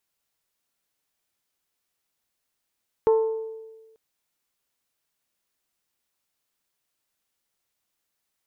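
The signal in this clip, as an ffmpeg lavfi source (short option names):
-f lavfi -i "aevalsrc='0.2*pow(10,-3*t/1.32)*sin(2*PI*444*t)+0.0596*pow(10,-3*t/0.813)*sin(2*PI*888*t)+0.0178*pow(10,-3*t/0.715)*sin(2*PI*1065.6*t)+0.00531*pow(10,-3*t/0.612)*sin(2*PI*1332*t)+0.00158*pow(10,-3*t/0.5)*sin(2*PI*1776*t)':d=0.89:s=44100"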